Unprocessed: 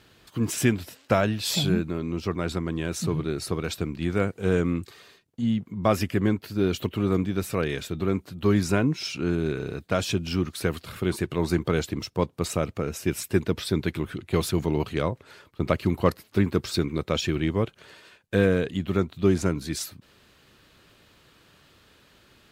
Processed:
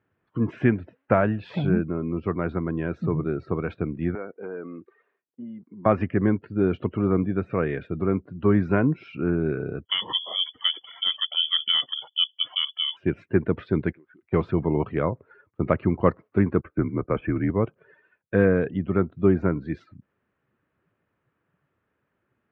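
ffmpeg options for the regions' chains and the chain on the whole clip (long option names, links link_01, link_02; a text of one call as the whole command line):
ffmpeg -i in.wav -filter_complex "[0:a]asettb=1/sr,asplit=3[link_01][link_02][link_03];[link_01]atrim=end=4.154[link_04];[link_02]atrim=start=4.15:end=5.86,asetpts=PTS-STARTPTS,afade=type=in:duration=0.004:curve=qsin,afade=type=out:start_time=1.706:duration=0.004:curve=qsin,highshelf=frequency=4500:gain=-10,acompressor=threshold=-26dB:ratio=8:attack=3.2:release=140:knee=1:detection=peak,highpass=360[link_05];[link_03]atrim=start=5.856[link_06];[link_04][link_05]acrossfade=duration=0.004:curve1=hsin:curve2=qsin[link_07];[link_07][link_06]acrossfade=duration=0.004:curve1=qsin:curve2=hsin,asettb=1/sr,asplit=3[link_08][link_09][link_10];[link_08]atrim=end=9.854[link_11];[link_09]atrim=start=9.85:end=12.97,asetpts=PTS-STARTPTS,afade=type=in:duration=0.004:curve=qsin,afade=type=out:start_time=3.116:duration=0.004:curve=qsin,lowshelf=frequency=640:width_type=q:width=3:gain=11,lowpass=frequency=3000:width_type=q:width=0.5098,lowpass=frequency=3000:width_type=q:width=0.6013,lowpass=frequency=3000:width_type=q:width=0.9,lowpass=frequency=3000:width_type=q:width=2.563,afreqshift=-3500[link_12];[link_10]atrim=start=12.966[link_13];[link_11][link_12]acrossfade=duration=0.004:curve1=hsin:curve2=qsin[link_14];[link_14][link_13]acrossfade=duration=0.004:curve1=qsin:curve2=hsin,asettb=1/sr,asplit=3[link_15][link_16][link_17];[link_15]atrim=end=13.924[link_18];[link_16]atrim=start=13.92:end=14.32,asetpts=PTS-STARTPTS,afade=type=in:duration=0.004:curve=qsin,afade=type=out:start_time=0.396:duration=0.004:curve=qsin,highpass=frequency=1000:poles=1,acompressor=threshold=-47dB:ratio=10:attack=3.2:release=140:knee=1:detection=peak[link_19];[link_17]atrim=start=14.316[link_20];[link_18][link_19]acrossfade=duration=0.004:curve1=hsin:curve2=qsin[link_21];[link_21][link_20]acrossfade=duration=0.004:curve1=qsin:curve2=hsin,asettb=1/sr,asplit=3[link_22][link_23][link_24];[link_22]atrim=end=16.614[link_25];[link_23]atrim=start=16.61:end=17.5,asetpts=PTS-STARTPTS,afade=type=in:duration=0.004:curve=qsin,afade=type=out:start_time=0.886:duration=0.004:curve=qsin,lowpass=frequency=2400:width=0.5412,lowpass=frequency=2400:width=1.3066,agate=range=-18dB:threshold=-43dB:ratio=16:release=100:detection=peak,afreqshift=-36[link_26];[link_24]atrim=start=17.496[link_27];[link_25][link_26]acrossfade=duration=0.004:curve1=hsin:curve2=qsin[link_28];[link_28][link_27]acrossfade=duration=0.004:curve1=qsin:curve2=hsin,highpass=83,afftdn=noise_reduction=18:noise_floor=-43,lowpass=frequency=2000:width=0.5412,lowpass=frequency=2000:width=1.3066,volume=2dB" out.wav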